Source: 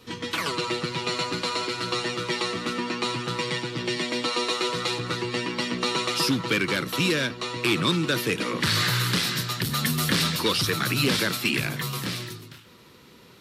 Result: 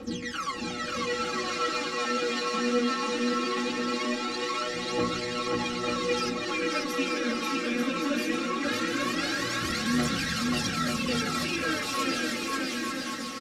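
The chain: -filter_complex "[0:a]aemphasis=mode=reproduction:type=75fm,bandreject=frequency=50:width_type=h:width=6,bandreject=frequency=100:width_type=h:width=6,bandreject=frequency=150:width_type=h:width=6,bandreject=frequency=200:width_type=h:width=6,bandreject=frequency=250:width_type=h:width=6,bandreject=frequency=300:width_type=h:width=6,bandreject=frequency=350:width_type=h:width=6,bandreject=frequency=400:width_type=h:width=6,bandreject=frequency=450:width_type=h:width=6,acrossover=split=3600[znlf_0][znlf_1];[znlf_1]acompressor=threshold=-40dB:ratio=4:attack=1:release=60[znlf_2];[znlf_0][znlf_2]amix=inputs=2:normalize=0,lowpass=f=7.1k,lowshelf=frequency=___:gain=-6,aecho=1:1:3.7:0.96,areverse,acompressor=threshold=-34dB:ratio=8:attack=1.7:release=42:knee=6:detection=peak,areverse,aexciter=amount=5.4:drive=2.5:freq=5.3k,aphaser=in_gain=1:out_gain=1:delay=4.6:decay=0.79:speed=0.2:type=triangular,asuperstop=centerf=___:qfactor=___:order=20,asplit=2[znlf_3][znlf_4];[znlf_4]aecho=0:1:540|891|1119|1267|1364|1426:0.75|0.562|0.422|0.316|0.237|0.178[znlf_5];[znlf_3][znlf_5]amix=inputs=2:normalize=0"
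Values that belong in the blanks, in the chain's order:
110, 980, 6.7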